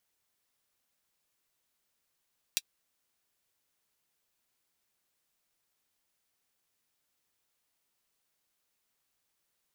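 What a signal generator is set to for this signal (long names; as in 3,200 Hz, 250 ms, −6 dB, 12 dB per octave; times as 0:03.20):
closed synth hi-hat, high-pass 3,200 Hz, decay 0.05 s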